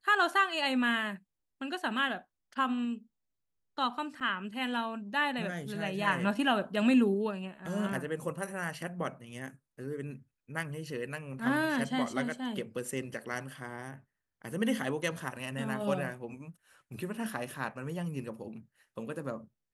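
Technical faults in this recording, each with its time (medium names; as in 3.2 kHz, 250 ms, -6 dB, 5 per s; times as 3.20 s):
4.20–4.21 s: dropout 7.7 ms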